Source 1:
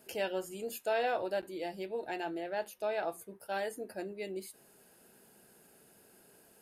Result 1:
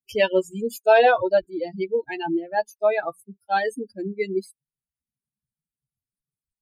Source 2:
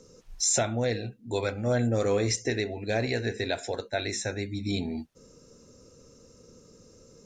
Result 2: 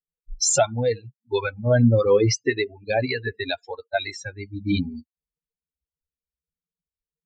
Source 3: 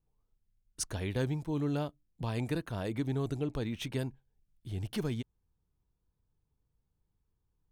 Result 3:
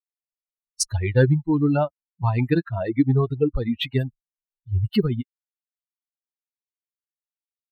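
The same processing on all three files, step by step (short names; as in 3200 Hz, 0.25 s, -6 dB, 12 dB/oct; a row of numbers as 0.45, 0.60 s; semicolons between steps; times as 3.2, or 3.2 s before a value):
per-bin expansion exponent 3; high shelf 7900 Hz -12 dB; mismatched tape noise reduction decoder only; match loudness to -23 LUFS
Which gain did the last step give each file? +20.0, +13.0, +19.5 dB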